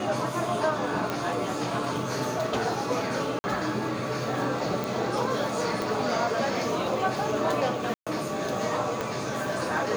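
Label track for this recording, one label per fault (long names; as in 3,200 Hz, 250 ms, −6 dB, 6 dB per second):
1.100000	1.100000	click −15 dBFS
3.390000	3.440000	drop-out 50 ms
4.840000	4.840000	click
5.820000	5.820000	click
7.940000	8.070000	drop-out 126 ms
9.010000	9.010000	click −15 dBFS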